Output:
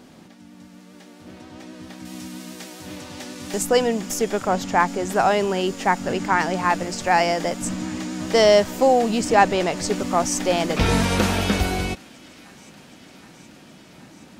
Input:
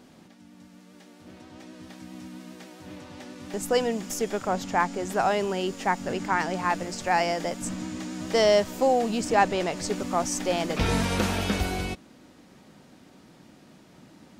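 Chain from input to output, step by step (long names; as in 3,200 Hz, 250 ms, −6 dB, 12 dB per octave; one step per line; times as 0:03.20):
0:02.05–0:03.63: high-shelf EQ 3,600 Hz +10 dB
on a send: delay with a high-pass on its return 771 ms, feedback 74%, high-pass 1,500 Hz, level −23.5 dB
on the sum: level +5.5 dB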